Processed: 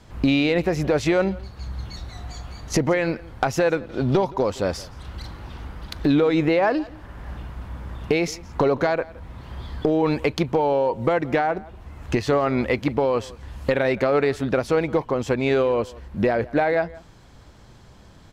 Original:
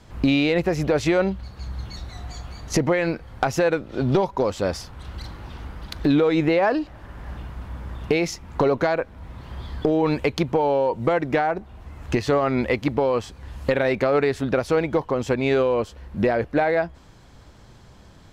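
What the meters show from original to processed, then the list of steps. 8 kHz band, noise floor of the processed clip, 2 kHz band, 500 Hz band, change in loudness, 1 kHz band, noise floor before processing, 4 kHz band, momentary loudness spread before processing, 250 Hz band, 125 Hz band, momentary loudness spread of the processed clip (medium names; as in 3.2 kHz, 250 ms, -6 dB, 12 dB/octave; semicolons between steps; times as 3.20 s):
0.0 dB, -48 dBFS, 0.0 dB, 0.0 dB, 0.0 dB, 0.0 dB, -48 dBFS, 0.0 dB, 17 LU, 0.0 dB, 0.0 dB, 17 LU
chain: echo from a far wall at 29 m, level -21 dB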